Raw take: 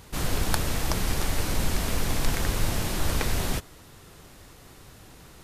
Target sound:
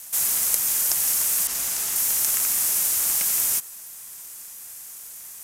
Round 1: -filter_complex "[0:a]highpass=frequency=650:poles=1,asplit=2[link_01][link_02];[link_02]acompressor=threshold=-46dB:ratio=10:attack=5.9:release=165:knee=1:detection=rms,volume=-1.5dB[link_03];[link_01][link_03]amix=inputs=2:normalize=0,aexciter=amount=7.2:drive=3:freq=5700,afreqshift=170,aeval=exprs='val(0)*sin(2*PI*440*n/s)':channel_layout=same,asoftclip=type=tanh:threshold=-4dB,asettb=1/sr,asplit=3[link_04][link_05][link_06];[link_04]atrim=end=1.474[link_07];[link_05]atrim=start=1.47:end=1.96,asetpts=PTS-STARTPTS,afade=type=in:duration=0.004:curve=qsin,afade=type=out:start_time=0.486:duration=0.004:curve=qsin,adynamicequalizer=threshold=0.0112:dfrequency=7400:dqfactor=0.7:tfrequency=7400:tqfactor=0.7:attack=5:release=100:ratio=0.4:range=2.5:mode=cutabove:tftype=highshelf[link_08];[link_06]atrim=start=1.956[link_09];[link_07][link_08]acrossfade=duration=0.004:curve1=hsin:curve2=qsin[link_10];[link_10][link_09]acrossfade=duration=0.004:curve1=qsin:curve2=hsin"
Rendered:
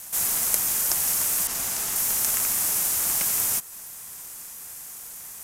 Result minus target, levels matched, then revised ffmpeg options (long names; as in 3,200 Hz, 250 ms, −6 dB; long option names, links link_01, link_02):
downward compressor: peak gain reduction +10.5 dB; 500 Hz band +5.0 dB
-filter_complex "[0:a]highpass=frequency=1600:poles=1,asplit=2[link_01][link_02];[link_02]acompressor=threshold=-36dB:ratio=10:attack=5.9:release=165:knee=1:detection=rms,volume=-1.5dB[link_03];[link_01][link_03]amix=inputs=2:normalize=0,aexciter=amount=7.2:drive=3:freq=5700,afreqshift=170,aeval=exprs='val(0)*sin(2*PI*440*n/s)':channel_layout=same,asoftclip=type=tanh:threshold=-4dB,asettb=1/sr,asplit=3[link_04][link_05][link_06];[link_04]atrim=end=1.474[link_07];[link_05]atrim=start=1.47:end=1.96,asetpts=PTS-STARTPTS,afade=type=in:duration=0.004:curve=qsin,afade=type=out:start_time=0.486:duration=0.004:curve=qsin,adynamicequalizer=threshold=0.0112:dfrequency=7400:dqfactor=0.7:tfrequency=7400:tqfactor=0.7:attack=5:release=100:ratio=0.4:range=2.5:mode=cutabove:tftype=highshelf[link_08];[link_06]atrim=start=1.956[link_09];[link_07][link_08]acrossfade=duration=0.004:curve1=hsin:curve2=qsin[link_10];[link_10][link_09]acrossfade=duration=0.004:curve1=qsin:curve2=hsin"